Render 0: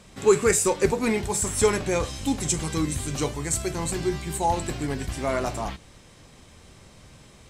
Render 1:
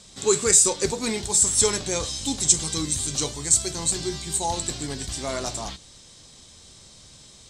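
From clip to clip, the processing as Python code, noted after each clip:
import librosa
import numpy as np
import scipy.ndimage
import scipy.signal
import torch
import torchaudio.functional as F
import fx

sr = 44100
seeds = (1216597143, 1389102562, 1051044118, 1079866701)

y = fx.band_shelf(x, sr, hz=5500.0, db=13.0, octaves=1.7)
y = F.gain(torch.from_numpy(y), -4.0).numpy()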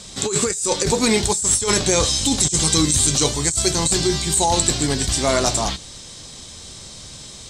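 y = fx.over_compress(x, sr, threshold_db=-26.0, ratio=-1.0)
y = F.gain(torch.from_numpy(y), 8.0).numpy()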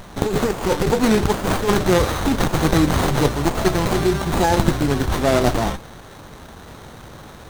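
y = fx.running_max(x, sr, window=17)
y = F.gain(torch.from_numpy(y), 2.0).numpy()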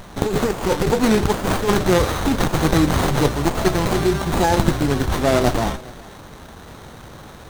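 y = x + 10.0 ** (-22.5 / 20.0) * np.pad(x, (int(414 * sr / 1000.0), 0))[:len(x)]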